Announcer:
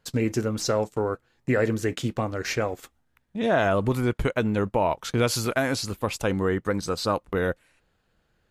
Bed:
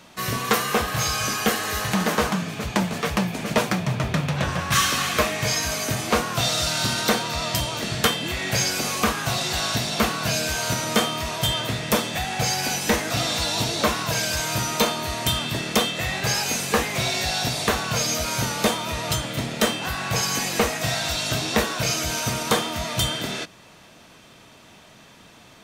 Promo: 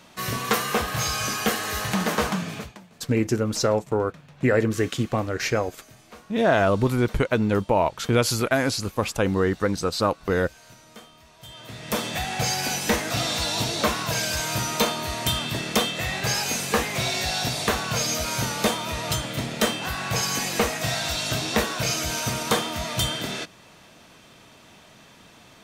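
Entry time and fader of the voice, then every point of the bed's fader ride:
2.95 s, +2.5 dB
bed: 2.58 s -2 dB
2.79 s -25 dB
11.35 s -25 dB
12.06 s -1.5 dB

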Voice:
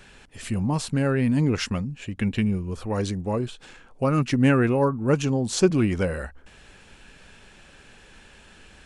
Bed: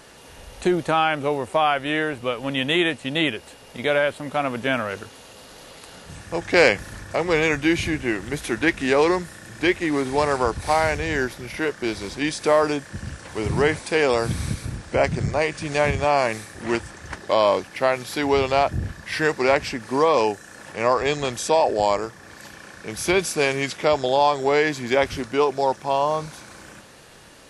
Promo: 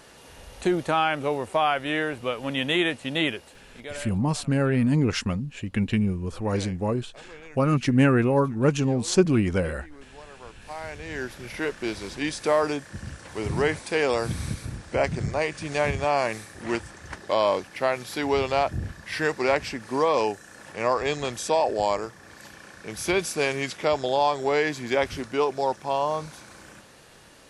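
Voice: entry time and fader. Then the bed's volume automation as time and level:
3.55 s, 0.0 dB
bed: 3.33 s -3 dB
4.33 s -26 dB
10.31 s -26 dB
11.45 s -4 dB

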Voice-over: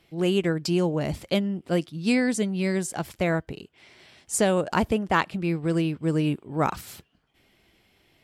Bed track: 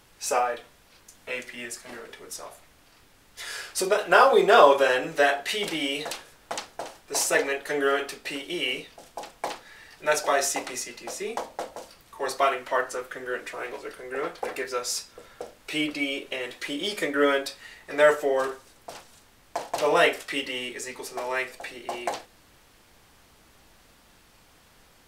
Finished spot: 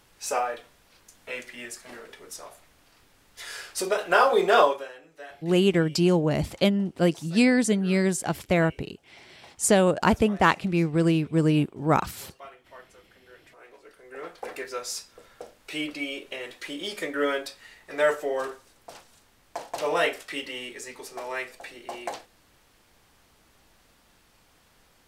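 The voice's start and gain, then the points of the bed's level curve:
5.30 s, +2.5 dB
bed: 4.61 s -2.5 dB
4.93 s -22.5 dB
13.24 s -22.5 dB
14.53 s -4 dB

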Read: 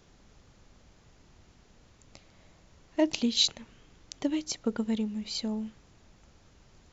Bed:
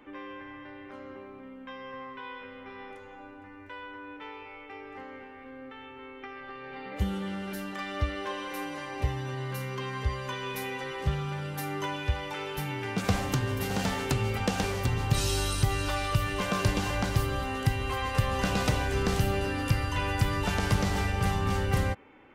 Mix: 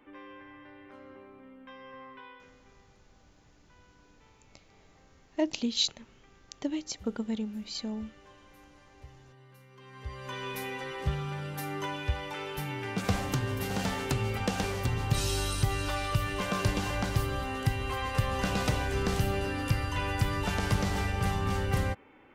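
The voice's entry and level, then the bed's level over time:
2.40 s, -3.0 dB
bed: 2.17 s -6 dB
2.86 s -21.5 dB
9.69 s -21.5 dB
10.38 s -2 dB

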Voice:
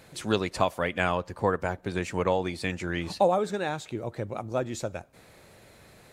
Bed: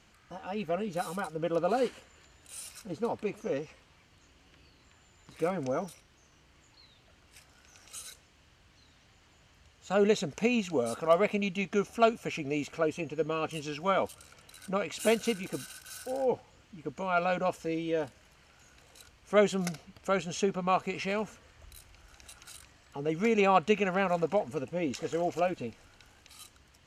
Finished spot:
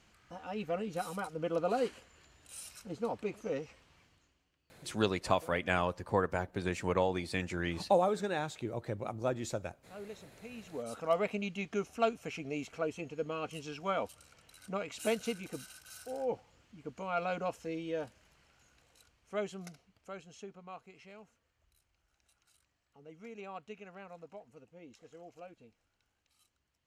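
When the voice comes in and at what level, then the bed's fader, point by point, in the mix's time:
4.70 s, -4.5 dB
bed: 4.03 s -3.5 dB
4.58 s -21.5 dB
10.48 s -21.5 dB
10.96 s -6 dB
18.3 s -6 dB
20.88 s -21.5 dB

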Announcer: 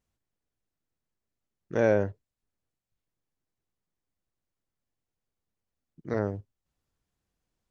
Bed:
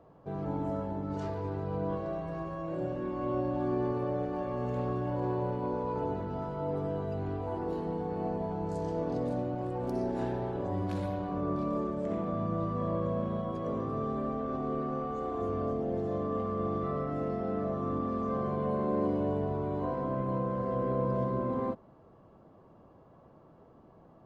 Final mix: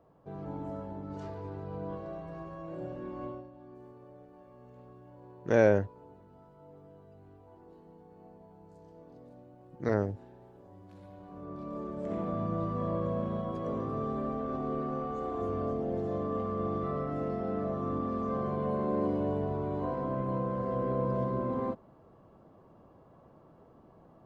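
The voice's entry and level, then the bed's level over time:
3.75 s, +0.5 dB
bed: 3.25 s -5.5 dB
3.51 s -20.5 dB
10.83 s -20.5 dB
12.21 s -0.5 dB

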